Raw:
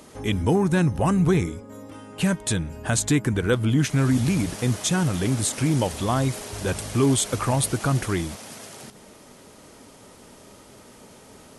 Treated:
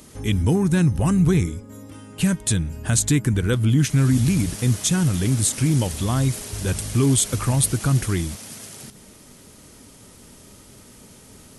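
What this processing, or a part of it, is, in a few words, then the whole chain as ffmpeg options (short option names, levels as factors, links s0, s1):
smiley-face EQ: -af "lowshelf=f=170:g=7.5,equalizer=f=720:t=o:w=1.8:g=-6,highshelf=f=6800:g=7.5"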